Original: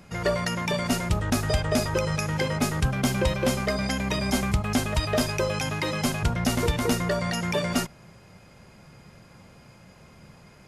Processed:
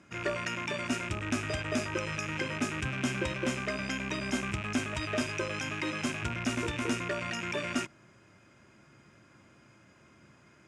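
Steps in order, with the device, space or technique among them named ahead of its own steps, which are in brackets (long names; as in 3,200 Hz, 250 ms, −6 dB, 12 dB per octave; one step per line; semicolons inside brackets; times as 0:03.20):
car door speaker with a rattle (loose part that buzzes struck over −34 dBFS, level −21 dBFS; loudspeaker in its box 110–8,500 Hz, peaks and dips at 170 Hz −9 dB, 320 Hz +7 dB, 480 Hz −7 dB, 790 Hz −7 dB, 1,500 Hz +4 dB, 4,400 Hz −9 dB)
level −6 dB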